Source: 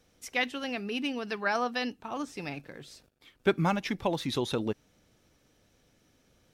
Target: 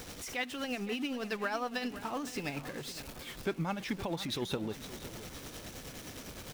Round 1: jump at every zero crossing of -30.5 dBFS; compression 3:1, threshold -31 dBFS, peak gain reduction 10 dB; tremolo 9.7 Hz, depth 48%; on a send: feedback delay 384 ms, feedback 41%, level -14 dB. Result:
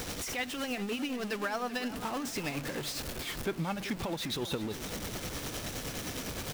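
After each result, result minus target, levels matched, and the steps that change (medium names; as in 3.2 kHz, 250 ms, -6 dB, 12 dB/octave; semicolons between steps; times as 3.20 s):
echo 130 ms early; jump at every zero crossing: distortion +6 dB
change: feedback delay 514 ms, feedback 41%, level -14 dB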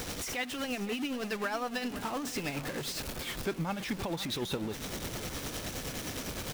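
jump at every zero crossing: distortion +6 dB
change: jump at every zero crossing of -38.5 dBFS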